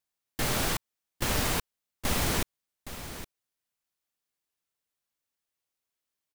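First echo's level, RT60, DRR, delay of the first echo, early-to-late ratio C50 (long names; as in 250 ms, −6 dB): −12.5 dB, no reverb audible, no reverb audible, 816 ms, no reverb audible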